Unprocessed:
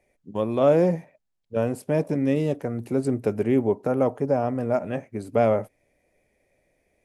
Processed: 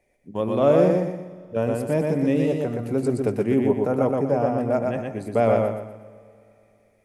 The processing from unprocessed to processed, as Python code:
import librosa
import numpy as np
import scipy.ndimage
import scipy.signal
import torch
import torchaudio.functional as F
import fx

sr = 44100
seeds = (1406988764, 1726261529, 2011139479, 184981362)

y = fx.echo_feedback(x, sr, ms=121, feedback_pct=37, wet_db=-3)
y = fx.rev_schroeder(y, sr, rt60_s=2.9, comb_ms=33, drr_db=19.5)